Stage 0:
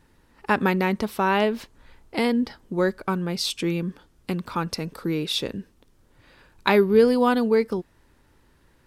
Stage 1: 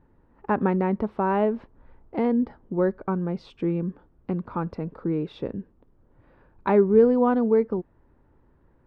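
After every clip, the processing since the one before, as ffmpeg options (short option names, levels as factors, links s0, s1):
-af "lowpass=1000"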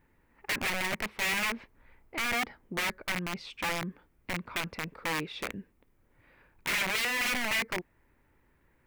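-af "crystalizer=i=6.5:c=0,aeval=exprs='(mod(10.6*val(0)+1,2)-1)/10.6':c=same,equalizer=f=2200:t=o:w=0.71:g=12,volume=0.376"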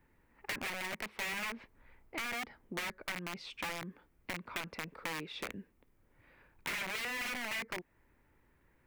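-filter_complex "[0:a]acrossover=split=190|2300[s0][s1][s2];[s0]acompressor=threshold=0.00251:ratio=4[s3];[s1]acompressor=threshold=0.0141:ratio=4[s4];[s2]acompressor=threshold=0.01:ratio=4[s5];[s3][s4][s5]amix=inputs=3:normalize=0,volume=0.794"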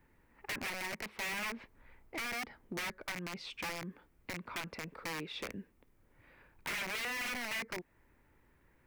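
-af "volume=56.2,asoftclip=hard,volume=0.0178,volume=1.19"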